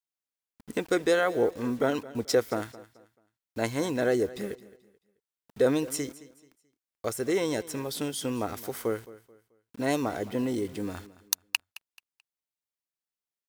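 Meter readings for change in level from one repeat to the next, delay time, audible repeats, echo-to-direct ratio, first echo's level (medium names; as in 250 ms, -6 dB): -10.0 dB, 217 ms, 2, -18.0 dB, -18.5 dB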